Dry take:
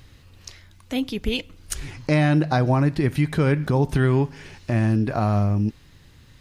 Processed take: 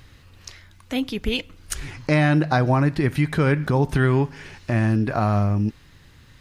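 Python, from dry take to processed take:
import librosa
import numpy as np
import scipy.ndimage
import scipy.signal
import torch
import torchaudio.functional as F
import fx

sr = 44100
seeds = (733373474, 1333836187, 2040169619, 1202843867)

y = fx.peak_eq(x, sr, hz=1500.0, db=4.0, octaves=1.5)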